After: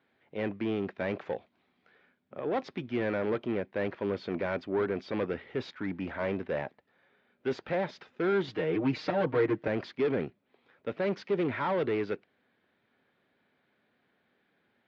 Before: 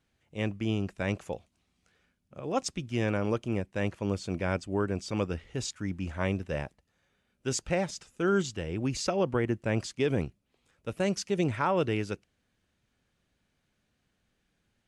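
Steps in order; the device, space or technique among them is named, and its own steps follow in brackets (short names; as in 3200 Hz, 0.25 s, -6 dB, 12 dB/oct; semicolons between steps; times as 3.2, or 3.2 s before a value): LPF 6600 Hz 12 dB/oct; overdrive pedal into a guitar cabinet (overdrive pedal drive 24 dB, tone 2300 Hz, clips at -14.5 dBFS; speaker cabinet 96–3700 Hz, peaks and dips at 250 Hz +4 dB, 400 Hz +4 dB, 1200 Hz -3 dB, 2800 Hz -7 dB); 8.47–9.68 comb 6.5 ms, depth 99%; gain -7.5 dB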